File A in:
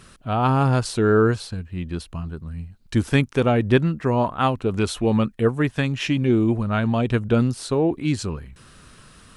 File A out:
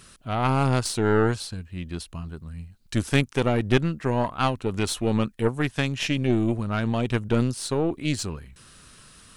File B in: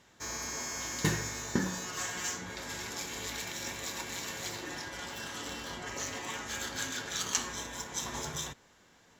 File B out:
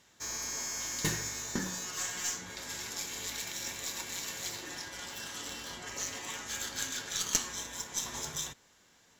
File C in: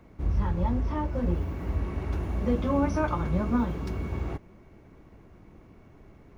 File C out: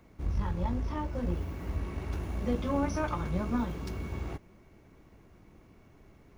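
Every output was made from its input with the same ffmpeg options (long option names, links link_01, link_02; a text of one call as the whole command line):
ffmpeg -i in.wav -af "highshelf=frequency=2900:gain=8.5,aeval=exprs='0.75*(cos(1*acos(clip(val(0)/0.75,-1,1)))-cos(1*PI/2))+0.119*(cos(4*acos(clip(val(0)/0.75,-1,1)))-cos(4*PI/2))':channel_layout=same,volume=-5dB" out.wav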